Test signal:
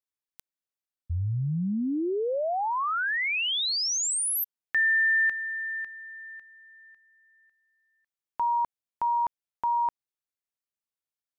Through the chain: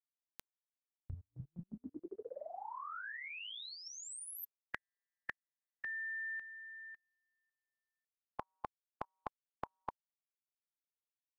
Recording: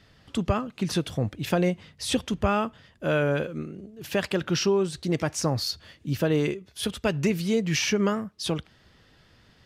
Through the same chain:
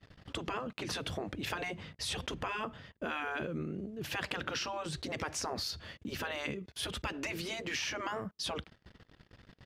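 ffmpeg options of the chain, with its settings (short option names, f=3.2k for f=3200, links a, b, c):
-af "afftfilt=real='re*lt(hypot(re,im),0.2)':imag='im*lt(hypot(re,im),0.2)':win_size=1024:overlap=0.75,agate=range=-25dB:threshold=-58dB:ratio=16:release=24:detection=rms,highshelf=f=4.6k:g=-9,acompressor=threshold=-41dB:ratio=6:attack=54:release=52:knee=6:detection=rms,volume=3dB"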